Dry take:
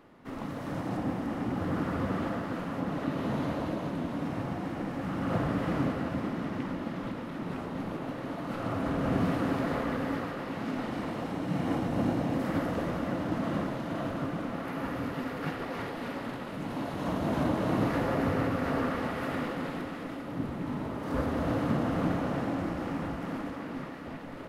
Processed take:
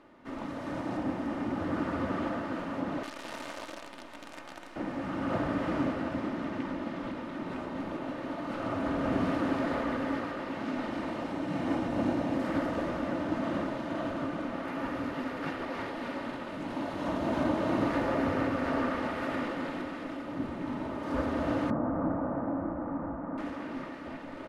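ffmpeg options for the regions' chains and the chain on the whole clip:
-filter_complex "[0:a]asettb=1/sr,asplit=3[s0][s1][s2];[s0]atrim=end=3.034[s3];[s1]atrim=start=3.03:end=4.76,asetpts=PTS-STARTPTS,afade=t=in:d=0.004:c=qsin,afade=t=out:st=1.726:d=0.004:c=qsin,highpass=f=1200:p=1,acrusher=bits=7:dc=4:mix=0:aa=0.000001[s4];[s2]atrim=start=4.756[s5];[s3][s4]acrossfade=d=0.004:c1=hsin:c2=qsin[s6];[s6][s5]acrossfade=d=0.004:c1=qsin:c2=hsin,asettb=1/sr,asplit=3[s7][s8][s9];[s7]atrim=end=21.704[s10];[s8]atrim=start=21.7:end=23.38,asetpts=PTS-STARTPTS,afade=t=in:d=0.004:c=qsin,afade=t=out:st=1.676:d=0.004:c=qsin,lowpass=f=1300:w=0.5412,lowpass=f=1300:w=1.3066,bandreject=f=380:w=5.6[s11];[s9]atrim=start=23.376[s12];[s10][s11]acrossfade=d=0.004:c1=hsin:c2=qsin[s13];[s13][s12]acrossfade=d=0.004:c1=qsin:c2=hsin,lowpass=9000,bass=f=250:g=-4,treble=f=4000:g=-2,aecho=1:1:3.3:0.35"

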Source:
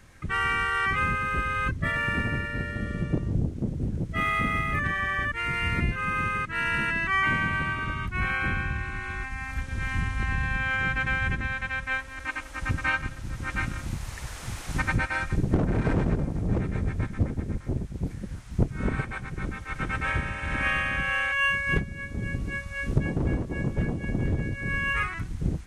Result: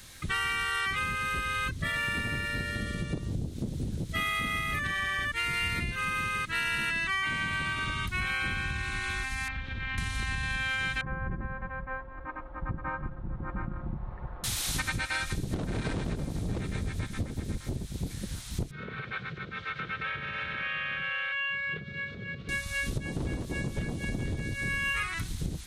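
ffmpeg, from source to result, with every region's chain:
-filter_complex "[0:a]asettb=1/sr,asplit=3[s0][s1][s2];[s0]atrim=end=9.484[s3];[s1]atrim=start=9.48:end=9.98,asetpts=PTS-STARTPTS,afade=t=in:d=0.004:c=qsin,afade=t=out:st=0.496:d=0.004:c=qsin,lowpass=f=3200:w=0.5412,lowpass=f=3200:w=1.3066,acompressor=threshold=0.0224:ratio=2.5:attack=3.2:release=140:knee=1:detection=peak[s4];[s2]atrim=start=9.976[s5];[s3][s4]acrossfade=d=0.004:c1=hsin:c2=qsin[s6];[s6][s5]acrossfade=d=0.004:c1=qsin:c2=hsin,asettb=1/sr,asplit=3[s7][s8][s9];[s7]atrim=end=11.014[s10];[s8]atrim=start=11.01:end=14.44,asetpts=PTS-STARTPTS,afade=t=in:d=0.004:c=qsin,afade=t=out:st=3.426:d=0.004:c=qsin,lowpass=f=1100:w=0.5412,lowpass=f=1100:w=1.3066,aecho=1:1:5.6:0.43,atrim=end_sample=151263[s11];[s9]atrim=start=14.436[s12];[s10][s11]acrossfade=d=0.004:c1=hsin:c2=qsin[s13];[s13][s12]acrossfade=d=0.004:c1=qsin:c2=hsin,asettb=1/sr,asplit=3[s14][s15][s16];[s14]atrim=end=18.714[s17];[s15]atrim=start=18.71:end=22.49,asetpts=PTS-STARTPTS,afade=t=in:d=0.004:c=qsin,afade=t=out:st=3.776:d=0.004:c=qsin,acompressor=threshold=0.0224:ratio=8:attack=3.2:release=140:knee=1:detection=peak,highpass=120,equalizer=f=150:t=q:w=4:g=4,equalizer=f=280:t=q:w=4:g=-9,equalizer=f=460:t=q:w=4:g=6,equalizer=f=850:t=q:w=4:g=-7,equalizer=f=1400:t=q:w=4:g=6,lowpass=f=3600:w=0.5412,lowpass=f=3600:w=1.3066[s18];[s16]atrim=start=22.486[s19];[s17][s18]acrossfade=d=0.004:c1=hsin:c2=qsin[s20];[s20][s19]acrossfade=d=0.004:c1=qsin:c2=hsin,aemphasis=mode=production:type=75fm,acompressor=threshold=0.0355:ratio=6,equalizer=f=3800:t=o:w=0.75:g=10.5"

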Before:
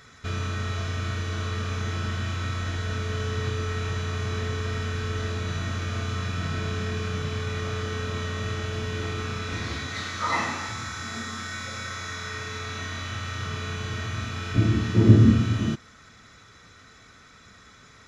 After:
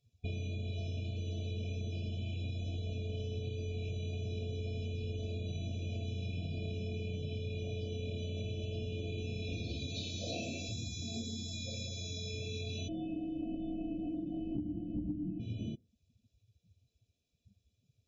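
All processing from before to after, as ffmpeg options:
-filter_complex "[0:a]asettb=1/sr,asplit=3[s0][s1][s2];[s0]atrim=end=12.884[s3];[s1]atrim=start=12.88:end=15.4,asetpts=PTS-STARTPTS,afade=t=in:d=0.004:c=qsin,afade=t=out:st=2.516:d=0.004:c=qsin,acrossover=split=2700[s4][s5];[s5]acompressor=threshold=0.00224:ratio=4:attack=1:release=60[s6];[s4][s6]amix=inputs=2:normalize=0,afreqshift=-410,highshelf=f=2600:g=-3[s7];[s2]atrim=start=15.396[s8];[s3][s7]acrossfade=d=0.004:c1=hsin:c2=qsin[s9];[s9][s8]acrossfade=d=0.004:c1=qsin:c2=hsin,afftdn=nr=29:nf=-38,afftfilt=real='re*(1-between(b*sr/4096,730,2300))':imag='im*(1-between(b*sr/4096,730,2300))':win_size=4096:overlap=0.75,acompressor=threshold=0.0224:ratio=20,volume=0.841"

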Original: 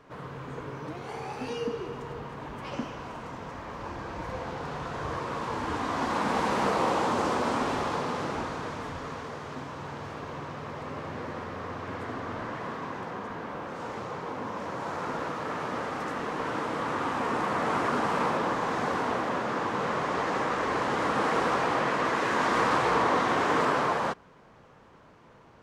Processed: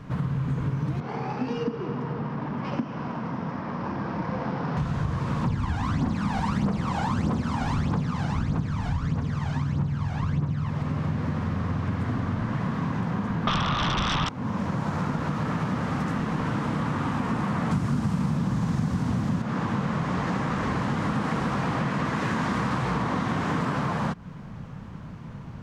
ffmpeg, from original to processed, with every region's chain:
-filter_complex "[0:a]asettb=1/sr,asplit=3[s0][s1][s2];[s0]atrim=end=1.004[s3];[s1]atrim=start=1:end=4.77,asetpts=PTS-STARTPTS,afade=t=in:d=0.004:c=qsin,afade=t=out:st=3.766:d=0.004:c=qsin,highpass=250,adynamicsmooth=sensitivity=1.5:basefreq=2000,equalizer=f=5300:w=3:g=10.5[s4];[s2]atrim=start=4.766[s5];[s3][s4]acrossfade=d=0.004:c1=hsin:c2=qsin[s6];[s6][s5]acrossfade=d=0.004:c1=qsin:c2=hsin,asettb=1/sr,asplit=3[s7][s8][s9];[s7]atrim=end=5.444[s10];[s8]atrim=start=5.44:end=10.7,asetpts=PTS-STARTPTS,afade=t=in:d=0.004:c=qsin,afade=t=out:st=5.256:d=0.004:c=qsin,lowpass=9100,aphaser=in_gain=1:out_gain=1:delay=1.4:decay=0.68:speed=1.6:type=triangular[s11];[s9]atrim=start=10.696[s12];[s10][s11]acrossfade=d=0.004:c1=hsin:c2=qsin[s13];[s13][s12]acrossfade=d=0.004:c1=qsin:c2=hsin,asettb=1/sr,asplit=3[s14][s15][s16];[s14]atrim=end=13.474[s17];[s15]atrim=start=13.47:end=14.29,asetpts=PTS-STARTPTS,afade=t=in:d=0.004:c=qsin,afade=t=out:st=0.816:d=0.004:c=qsin,lowpass=f=1200:t=q:w=7.3,aeval=exprs='0.178*sin(PI/2*5.01*val(0)/0.178)':c=same[s18];[s16]atrim=start=14.286[s19];[s17][s18]acrossfade=d=0.004:c1=hsin:c2=qsin[s20];[s20][s19]acrossfade=d=0.004:c1=qsin:c2=hsin,asettb=1/sr,asplit=3[s21][s22][s23];[s21]atrim=end=17.714[s24];[s22]atrim=start=17.71:end=19.42,asetpts=PTS-STARTPTS,afade=t=in:d=0.004:c=qsin,afade=t=out:st=1.706:d=0.004:c=qsin,highpass=42,bass=f=250:g=12,treble=f=4000:g=10[s25];[s23]atrim=start=19.416[s26];[s24][s25]acrossfade=d=0.004:c1=hsin:c2=qsin[s27];[s27][s26]acrossfade=d=0.004:c1=qsin:c2=hsin,lowshelf=f=270:t=q:w=1.5:g=13,acompressor=threshold=0.0282:ratio=6,volume=2.24"

